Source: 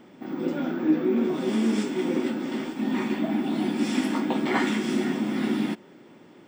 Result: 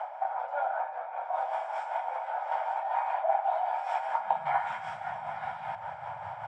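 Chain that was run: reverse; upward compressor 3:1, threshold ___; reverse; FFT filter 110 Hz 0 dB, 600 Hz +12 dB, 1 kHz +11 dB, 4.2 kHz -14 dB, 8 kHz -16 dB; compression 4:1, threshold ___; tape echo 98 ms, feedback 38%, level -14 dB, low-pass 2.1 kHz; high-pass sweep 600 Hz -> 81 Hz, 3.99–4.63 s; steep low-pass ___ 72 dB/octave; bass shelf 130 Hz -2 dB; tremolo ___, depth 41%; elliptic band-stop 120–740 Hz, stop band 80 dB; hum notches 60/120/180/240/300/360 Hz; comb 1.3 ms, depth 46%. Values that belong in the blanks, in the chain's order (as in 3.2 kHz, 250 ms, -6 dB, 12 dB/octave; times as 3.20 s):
-28 dBFS, -22 dBFS, 9.9 kHz, 5.1 Hz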